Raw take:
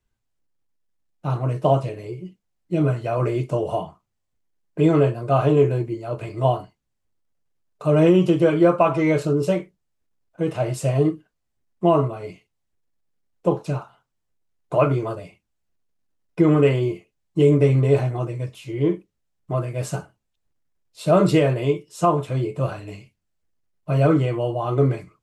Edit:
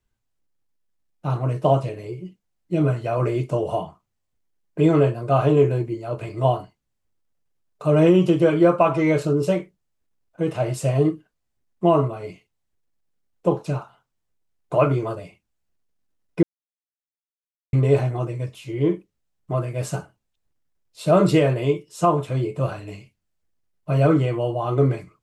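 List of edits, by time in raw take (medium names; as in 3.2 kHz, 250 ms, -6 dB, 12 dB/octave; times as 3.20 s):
16.43–17.73 s: mute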